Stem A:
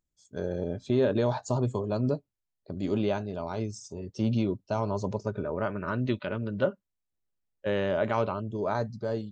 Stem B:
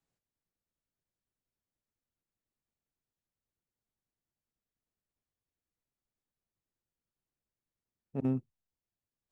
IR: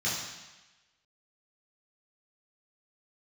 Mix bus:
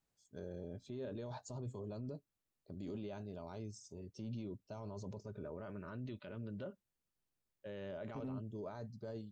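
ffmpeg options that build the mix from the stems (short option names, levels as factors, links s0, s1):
-filter_complex "[0:a]equalizer=f=1200:w=0.59:g=-4.5,volume=0.282[s0];[1:a]acompressor=threshold=0.0316:ratio=6,volume=1.06[s1];[s0][s1]amix=inputs=2:normalize=0,alimiter=level_in=4.22:limit=0.0631:level=0:latency=1:release=19,volume=0.237"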